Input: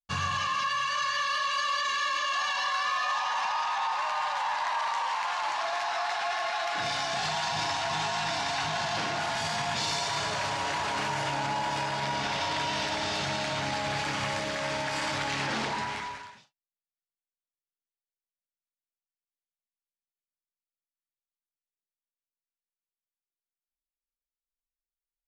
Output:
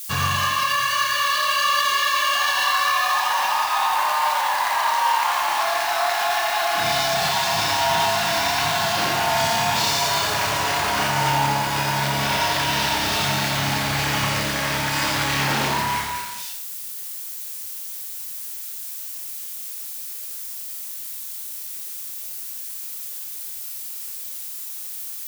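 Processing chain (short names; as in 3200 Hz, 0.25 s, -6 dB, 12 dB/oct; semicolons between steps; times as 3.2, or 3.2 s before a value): switching spikes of -32 dBFS; flutter echo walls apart 5.1 m, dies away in 0.25 s; lo-fi delay 86 ms, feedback 35%, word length 8-bit, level -5 dB; gain +6.5 dB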